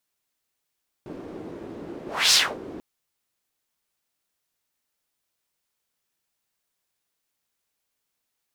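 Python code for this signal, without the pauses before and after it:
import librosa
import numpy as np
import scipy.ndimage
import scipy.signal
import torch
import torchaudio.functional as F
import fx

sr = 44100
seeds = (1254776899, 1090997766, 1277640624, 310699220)

y = fx.whoosh(sr, seeds[0], length_s=1.74, peak_s=1.27, rise_s=0.29, fall_s=0.26, ends_hz=340.0, peak_hz=5100.0, q=2.3, swell_db=21.0)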